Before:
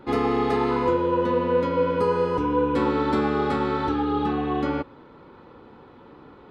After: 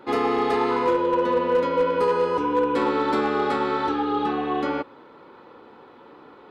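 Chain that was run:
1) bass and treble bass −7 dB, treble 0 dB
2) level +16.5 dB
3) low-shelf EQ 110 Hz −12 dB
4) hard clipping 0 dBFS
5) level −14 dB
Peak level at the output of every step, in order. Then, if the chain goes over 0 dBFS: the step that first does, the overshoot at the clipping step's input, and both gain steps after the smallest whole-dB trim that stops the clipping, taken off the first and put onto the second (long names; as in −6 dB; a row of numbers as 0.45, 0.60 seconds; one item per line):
−11.5, +5.0, +4.5, 0.0, −14.0 dBFS
step 2, 4.5 dB
step 2 +11.5 dB, step 5 −9 dB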